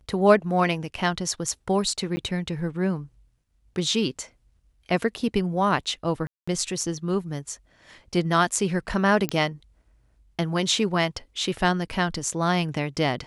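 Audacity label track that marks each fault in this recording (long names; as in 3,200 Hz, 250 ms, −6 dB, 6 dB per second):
2.160000	2.170000	drop-out 10 ms
6.270000	6.470000	drop-out 205 ms
9.290000	9.290000	click −10 dBFS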